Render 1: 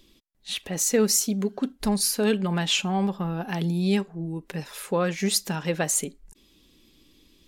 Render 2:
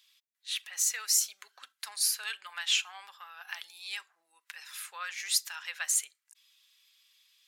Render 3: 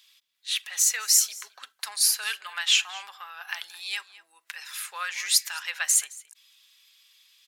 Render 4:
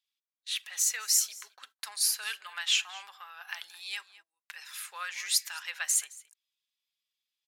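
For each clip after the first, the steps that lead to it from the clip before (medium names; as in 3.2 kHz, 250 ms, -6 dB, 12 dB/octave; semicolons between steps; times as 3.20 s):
high-pass 1.3 kHz 24 dB/octave; trim -3 dB
echo from a far wall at 37 m, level -18 dB; trim +6.5 dB
gate -50 dBFS, range -23 dB; trim -5.5 dB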